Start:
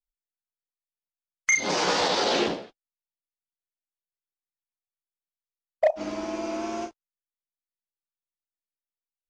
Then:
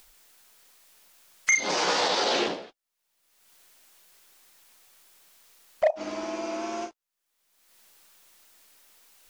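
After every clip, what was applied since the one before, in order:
low-shelf EQ 220 Hz −11 dB
upward compression, threshold −29 dBFS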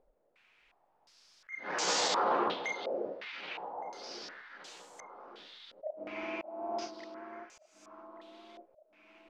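delay that swaps between a low-pass and a high-pass 584 ms, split 1,300 Hz, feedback 68%, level −8 dB
volume swells 435 ms
low-pass on a step sequencer 2.8 Hz 560–7,400 Hz
level −7 dB

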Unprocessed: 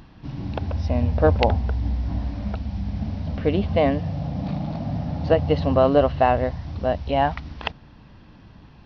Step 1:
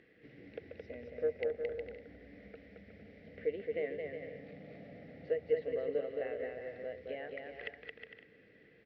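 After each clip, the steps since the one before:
downward compressor 2 to 1, threshold −35 dBFS, peak gain reduction 12.5 dB
pair of resonant band-passes 960 Hz, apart 2.1 octaves
bouncing-ball delay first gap 220 ms, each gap 0.65×, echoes 5
level +1 dB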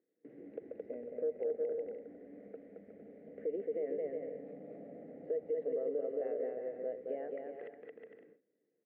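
noise gate with hold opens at −49 dBFS
brickwall limiter −32 dBFS, peak gain reduction 11 dB
four-pole ladder band-pass 420 Hz, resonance 20%
level +15 dB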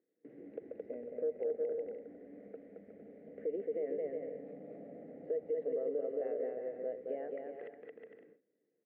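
no processing that can be heard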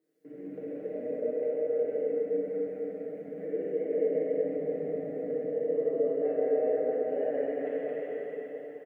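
comb filter 6.6 ms, depth 71%
brickwall limiter −31.5 dBFS, peak gain reduction 8.5 dB
dense smooth reverb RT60 4.7 s, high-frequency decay 0.85×, DRR −9.5 dB

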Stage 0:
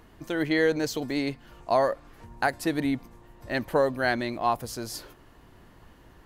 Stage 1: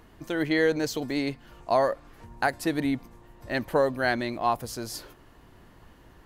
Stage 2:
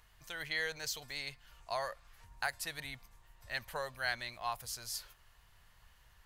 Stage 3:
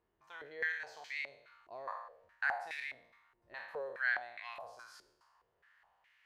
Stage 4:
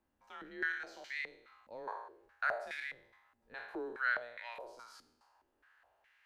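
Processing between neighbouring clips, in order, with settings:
no processing that can be heard
guitar amp tone stack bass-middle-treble 10-0-10; level −2 dB
peak hold with a decay on every bin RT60 0.84 s; band-pass on a step sequencer 4.8 Hz 350–2,200 Hz; level +4 dB
frequency shifter −120 Hz

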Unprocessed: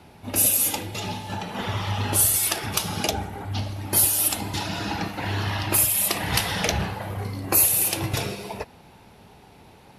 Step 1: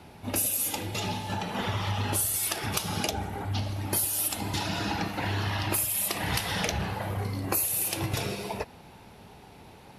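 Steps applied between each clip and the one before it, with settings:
downward compressor 4 to 1, threshold −26 dBFS, peak gain reduction 10.5 dB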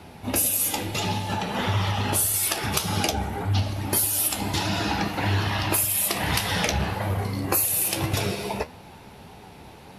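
flanger 1.7 Hz, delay 9.2 ms, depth 6.6 ms, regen +57%
level +9 dB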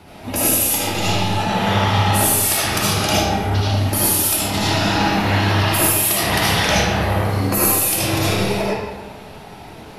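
comb and all-pass reverb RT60 1.2 s, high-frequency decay 0.75×, pre-delay 35 ms, DRR −8 dB

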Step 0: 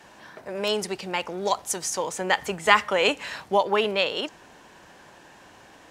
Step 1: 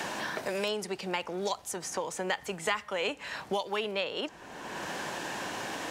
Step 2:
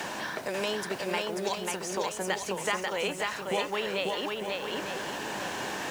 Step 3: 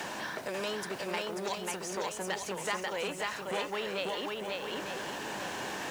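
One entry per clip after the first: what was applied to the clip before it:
multiband upward and downward compressor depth 100%; level −8 dB
bit-depth reduction 10 bits, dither triangular; feedback echo with a long and a short gap by turns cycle 900 ms, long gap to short 1.5 to 1, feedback 30%, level −3 dB
saturating transformer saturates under 1,500 Hz; level −2.5 dB

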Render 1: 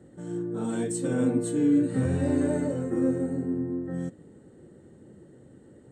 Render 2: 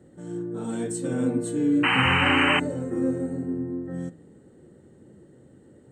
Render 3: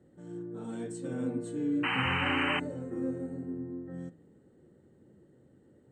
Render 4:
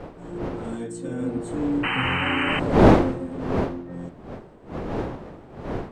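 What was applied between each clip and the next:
hum removal 55.58 Hz, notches 33; sound drawn into the spectrogram noise, 0:01.83–0:02.60, 740–3,100 Hz −22 dBFS
high-frequency loss of the air 53 metres; level −8.5 dB
wind on the microphone 510 Hz −31 dBFS; level +5.5 dB

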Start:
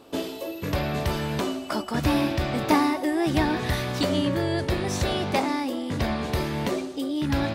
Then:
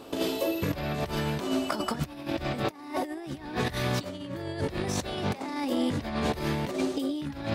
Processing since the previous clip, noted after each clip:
compressor whose output falls as the input rises −30 dBFS, ratio −0.5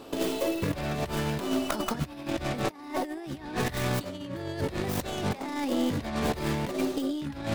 stylus tracing distortion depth 0.31 ms

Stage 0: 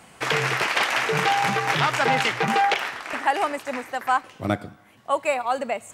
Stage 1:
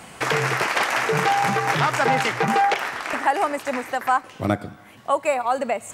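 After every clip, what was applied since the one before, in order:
dynamic equaliser 3,200 Hz, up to −6 dB, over −37 dBFS, Q 1.1
in parallel at +2.5 dB: downward compressor, threshold −33 dBFS, peak gain reduction 15.5 dB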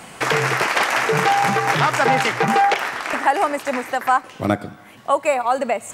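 parametric band 78 Hz −5 dB 1 octave
level +3 dB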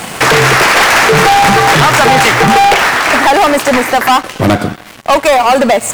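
leveller curve on the samples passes 5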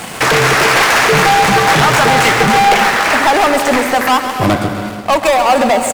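repeating echo 134 ms, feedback 59%, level −11 dB
reverb whose tail is shaped and stops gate 380 ms rising, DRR 10 dB
level −3.5 dB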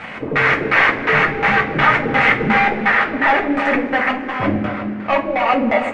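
auto-filter low-pass square 2.8 Hz 350–2,100 Hz
coupled-rooms reverb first 0.22 s, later 3.6 s, from −22 dB, DRR −1 dB
level −9.5 dB

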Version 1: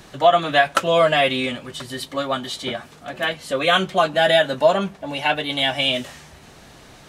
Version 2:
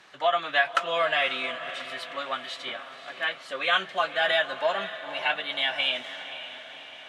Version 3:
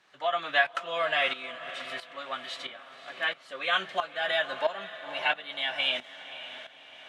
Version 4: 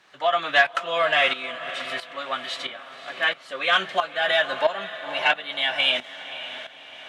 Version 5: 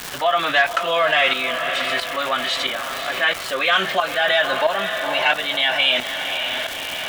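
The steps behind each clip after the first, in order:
resonant band-pass 1,900 Hz, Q 0.81; feedback delay with all-pass diffusion 532 ms, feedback 56%, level −12 dB; level −3.5 dB
shaped tremolo saw up 1.5 Hz, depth 75%
soft clipping −12.5 dBFS, distortion −25 dB; level +7 dB
surface crackle 560 per second −35 dBFS; envelope flattener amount 50%

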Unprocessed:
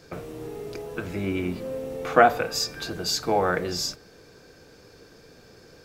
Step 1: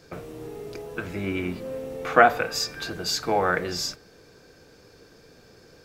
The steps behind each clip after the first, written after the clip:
dynamic equaliser 1,800 Hz, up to +5 dB, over −41 dBFS, Q 0.82
level −1.5 dB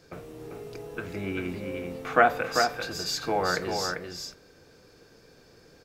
single-tap delay 393 ms −5 dB
level −4 dB

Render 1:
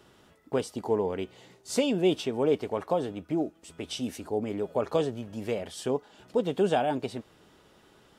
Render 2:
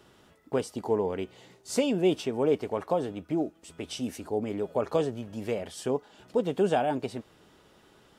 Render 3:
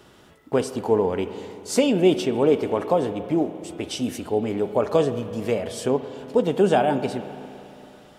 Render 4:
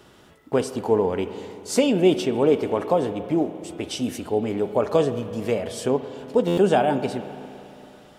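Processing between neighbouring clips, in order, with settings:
dynamic equaliser 3,600 Hz, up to −4 dB, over −50 dBFS, Q 2.4
spring reverb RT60 2.9 s, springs 35/55 ms, chirp 25 ms, DRR 10.5 dB; level +6.5 dB
buffer that repeats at 0:06.47, samples 512, times 8

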